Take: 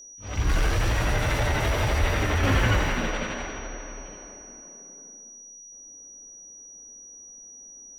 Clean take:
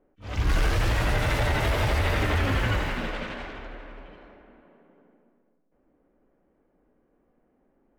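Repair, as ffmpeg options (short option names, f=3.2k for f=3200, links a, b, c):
-filter_complex "[0:a]bandreject=f=5.8k:w=30,asplit=3[a][b][c];[a]afade=t=out:st=2:d=0.02[d];[b]highpass=f=140:w=0.5412,highpass=f=140:w=1.3066,afade=t=in:st=2:d=0.02,afade=t=out:st=2.12:d=0.02[e];[c]afade=t=in:st=2.12:d=0.02[f];[d][e][f]amix=inputs=3:normalize=0,asetnsamples=n=441:p=0,asendcmd='2.43 volume volume -3.5dB',volume=0dB"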